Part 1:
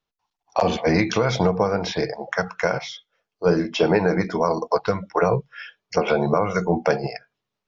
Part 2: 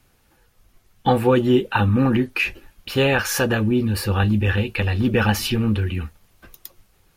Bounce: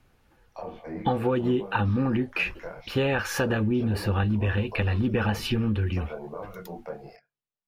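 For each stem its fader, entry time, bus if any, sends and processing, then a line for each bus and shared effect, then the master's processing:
−14.5 dB, 0.00 s, no send, de-essing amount 80%; treble cut that deepens with the level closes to 1,600 Hz, closed at −16 dBFS; multi-voice chorus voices 4, 0.7 Hz, delay 24 ms, depth 4.5 ms
−1.5 dB, 0.00 s, no send, high-shelf EQ 4,400 Hz −12 dB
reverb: not used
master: downward compressor, threshold −21 dBFS, peak gain reduction 8 dB

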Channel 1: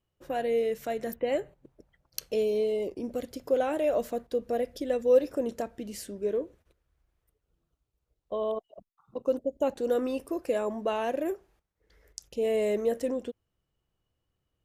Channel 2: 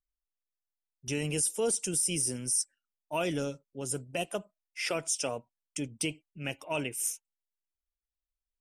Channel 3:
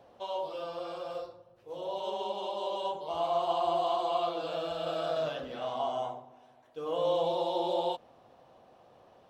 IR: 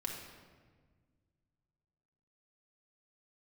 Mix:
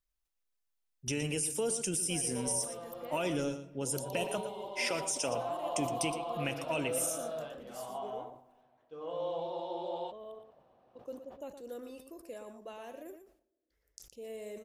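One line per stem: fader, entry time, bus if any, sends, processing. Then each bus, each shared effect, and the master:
−18.0 dB, 1.80 s, send −23.5 dB, echo send −9 dB, downward expander −59 dBFS; high-shelf EQ 4,500 Hz +10.5 dB
+2.0 dB, 0.00 s, send −13 dB, echo send −10.5 dB, brickwall limiter −22.5 dBFS, peak gain reduction 5.5 dB; downward compressor 2 to 1, threshold −37 dBFS, peak gain reduction 6 dB
−7.5 dB, 2.15 s, no send, no echo send, low-pass filter 2,300 Hz 6 dB per octave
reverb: on, RT60 1.6 s, pre-delay 4 ms
echo: single-tap delay 117 ms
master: level that may fall only so fast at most 120 dB per second

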